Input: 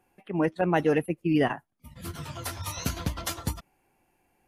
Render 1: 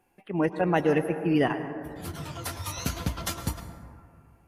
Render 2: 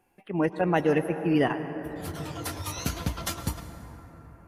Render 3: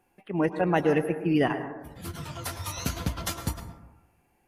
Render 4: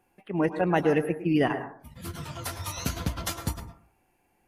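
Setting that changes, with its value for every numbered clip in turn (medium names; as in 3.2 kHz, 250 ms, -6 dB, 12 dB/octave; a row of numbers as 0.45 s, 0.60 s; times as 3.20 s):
plate-style reverb, RT60: 2.4 s, 5.1 s, 1.1 s, 0.51 s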